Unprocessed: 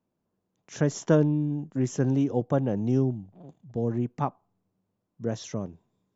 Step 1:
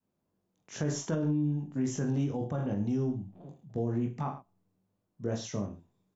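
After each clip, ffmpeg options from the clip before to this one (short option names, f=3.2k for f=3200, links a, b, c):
-af "aecho=1:1:20|43|69.45|99.87|134.8:0.631|0.398|0.251|0.158|0.1,alimiter=limit=-18dB:level=0:latency=1:release=50,adynamicequalizer=threshold=0.00794:dfrequency=480:dqfactor=1.1:tfrequency=480:tqfactor=1.1:attack=5:release=100:ratio=0.375:range=3:mode=cutabove:tftype=bell,volume=-3dB"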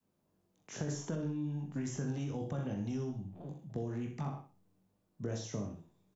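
-filter_complex "[0:a]acrossover=split=110|730|1700|5700[a][b][c][d][e];[a]acompressor=threshold=-48dB:ratio=4[f];[b]acompressor=threshold=-41dB:ratio=4[g];[c]acompressor=threshold=-59dB:ratio=4[h];[d]acompressor=threshold=-59dB:ratio=4[i];[e]acompressor=threshold=-53dB:ratio=4[j];[f][g][h][i][j]amix=inputs=5:normalize=0,asplit=2[k][l];[l]aecho=0:1:63|126|189:0.335|0.0804|0.0193[m];[k][m]amix=inputs=2:normalize=0,volume=2.5dB"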